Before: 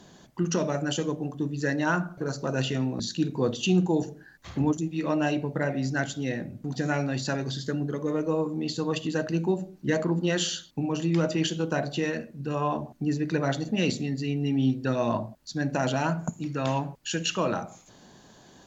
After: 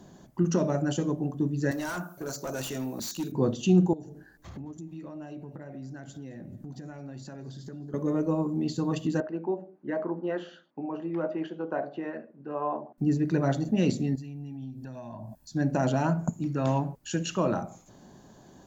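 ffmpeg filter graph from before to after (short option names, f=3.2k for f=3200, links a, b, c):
-filter_complex "[0:a]asettb=1/sr,asplit=3[a][b][c];[a]atrim=end=1.714[d];[b]atrim=start=1.71:end=3.32,asetpts=PTS-STARTPTS,afade=t=in:d=0.004:c=qsin,afade=t=out:st=1.606:d=0.004:c=qsin,aemphasis=mode=production:type=riaa,volume=28.5dB,asoftclip=hard,volume=-28.5dB[e];[c]atrim=start=3.316[f];[d][e]acrossfade=d=0.004:c1=hsin:c2=qsin[g];[g][f]acrossfade=d=0.004:c1=qsin:c2=hsin,asettb=1/sr,asplit=3[h][i][j];[h]atrim=end=3.934[k];[i]atrim=start=3.93:end=7.94,asetpts=PTS-STARTPTS,afade=t=in:d=0.004:c=qsin,afade=t=out:st=4.006:d=0.004:c=qsin,acompressor=threshold=-40dB:ratio=6:attack=3.2:release=140:knee=1:detection=peak,aecho=1:1:217|434|651:0.075|0.0315|0.0132,atrim=end_sample=176841[l];[j]atrim=start=7.936[m];[k][l]acrossfade=d=0.004:c1=hsin:c2=qsin[n];[n][m]acrossfade=d=0.004:c1=qsin:c2=hsin,asettb=1/sr,asplit=3[o][p][q];[o]atrim=end=9.204[r];[p]atrim=start=9.2:end=12.98,asetpts=PTS-STARTPTS,afade=t=in:d=0.004:c=qsin,afade=t=out:st=3.776:d=0.004:c=qsin,highpass=430,lowpass=2.2k,aemphasis=mode=reproduction:type=75kf[s];[q]atrim=start=12.976[t];[r][s]acrossfade=d=0.004:c1=hsin:c2=qsin[u];[u][t]acrossfade=d=0.004:c1=qsin:c2=hsin,asettb=1/sr,asplit=3[v][w][x];[v]atrim=end=14.154[y];[w]atrim=start=14.15:end=15.53,asetpts=PTS-STARTPTS,afade=t=in:d=0.004:c=qsin,afade=t=out:st=1.376:d=0.004:c=qsin,acompressor=threshold=-40dB:ratio=6:attack=3.2:release=140:knee=1:detection=peak,highshelf=f=6.7k:g=7,aecho=1:1:1.2:0.51,atrim=end_sample=60858[z];[x]atrim=start=15.526[aa];[y][z]acrossfade=d=0.004:c1=hsin:c2=qsin[ab];[ab][aa]acrossfade=d=0.004:c1=qsin:c2=hsin,equalizer=f=3.2k:t=o:w=2.7:g=-11,bandreject=f=470:w=12,volume=2.5dB"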